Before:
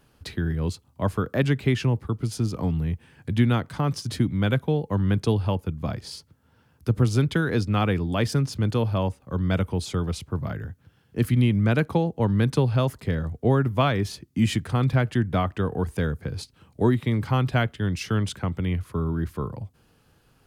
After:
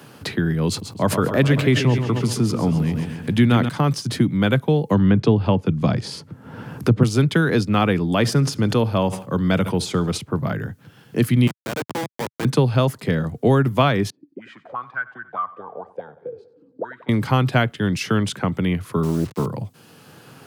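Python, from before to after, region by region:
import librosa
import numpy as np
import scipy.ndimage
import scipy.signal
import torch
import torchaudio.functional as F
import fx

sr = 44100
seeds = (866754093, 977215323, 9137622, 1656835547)

y = fx.chain(x, sr, fx.echo_feedback(ms=134, feedback_pct=54, wet_db=-10.0),
    fx.sustainer(db_per_s=86.0), at=(0.68, 3.69))
y = fx.chain(y, sr, fx.low_shelf(hz=420.0, db=5.5),
    fx.env_lowpass_down(base_hz=2000.0, full_db=-12.5),
    fx.band_squash(depth_pct=40), at=(4.89, 7.03))
y = fx.chain(y, sr, fx.echo_feedback(ms=69, feedback_pct=51, wet_db=-23.0),
    fx.sustainer(db_per_s=140.0), at=(8.11, 10.18))
y = fx.chain(y, sr, fx.highpass(hz=730.0, slope=12),
    fx.high_shelf(hz=6800.0, db=8.5),
    fx.schmitt(flips_db=-30.0), at=(11.47, 12.45))
y = fx.chain(y, sr, fx.high_shelf(hz=8800.0, db=-10.0),
    fx.auto_wah(base_hz=250.0, top_hz=1500.0, q=14.0, full_db=-17.0, direction='up'),
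    fx.echo_feedback(ms=92, feedback_pct=56, wet_db=-18.5), at=(14.1, 17.09))
y = fx.chain(y, sr, fx.lowpass(hz=1100.0, slope=24),
    fx.quant_dither(seeds[0], bits=8, dither='none'),
    fx.doppler_dist(depth_ms=0.38), at=(19.03, 19.46))
y = scipy.signal.sosfilt(scipy.signal.butter(4, 120.0, 'highpass', fs=sr, output='sos'), y)
y = fx.band_squash(y, sr, depth_pct=40)
y = F.gain(torch.from_numpy(y), 6.0).numpy()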